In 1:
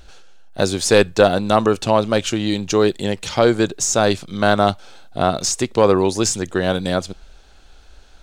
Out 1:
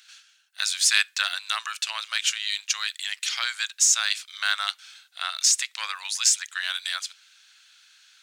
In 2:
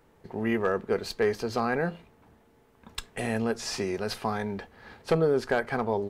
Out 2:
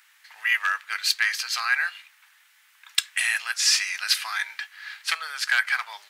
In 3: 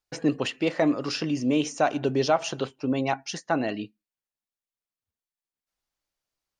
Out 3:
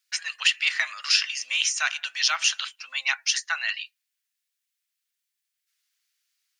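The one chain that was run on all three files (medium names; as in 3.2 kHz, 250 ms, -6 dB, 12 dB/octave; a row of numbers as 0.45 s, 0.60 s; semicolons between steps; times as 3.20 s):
inverse Chebyshev high-pass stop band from 370 Hz, stop band 70 dB; normalise loudness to -24 LUFS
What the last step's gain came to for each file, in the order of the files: +1.5 dB, +15.0 dB, +11.5 dB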